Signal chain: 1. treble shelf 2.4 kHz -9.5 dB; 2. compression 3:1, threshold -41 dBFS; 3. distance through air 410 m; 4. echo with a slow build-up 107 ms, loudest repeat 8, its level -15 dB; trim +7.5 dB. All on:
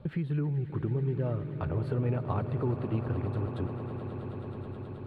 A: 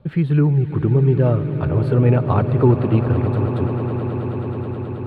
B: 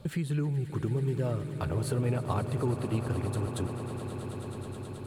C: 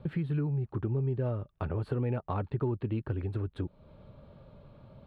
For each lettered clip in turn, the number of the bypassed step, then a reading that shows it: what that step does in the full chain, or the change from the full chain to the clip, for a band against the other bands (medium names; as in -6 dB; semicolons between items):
2, mean gain reduction 12.5 dB; 3, 2 kHz band +3.0 dB; 4, echo-to-direct -3.5 dB to none